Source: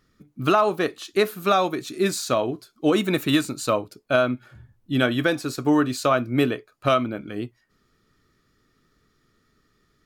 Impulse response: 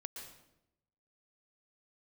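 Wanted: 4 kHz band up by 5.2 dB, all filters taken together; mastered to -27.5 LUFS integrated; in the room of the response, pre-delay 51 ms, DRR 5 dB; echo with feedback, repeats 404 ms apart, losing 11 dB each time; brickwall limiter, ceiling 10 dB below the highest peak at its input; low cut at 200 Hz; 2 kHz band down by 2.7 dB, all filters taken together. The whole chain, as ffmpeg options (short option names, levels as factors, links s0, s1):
-filter_complex "[0:a]highpass=200,equalizer=f=2000:t=o:g=-6,equalizer=f=4000:t=o:g=8,alimiter=limit=0.158:level=0:latency=1,aecho=1:1:404|808|1212:0.282|0.0789|0.0221,asplit=2[s0][s1];[1:a]atrim=start_sample=2205,adelay=51[s2];[s1][s2]afir=irnorm=-1:irlink=0,volume=0.794[s3];[s0][s3]amix=inputs=2:normalize=0,volume=0.841"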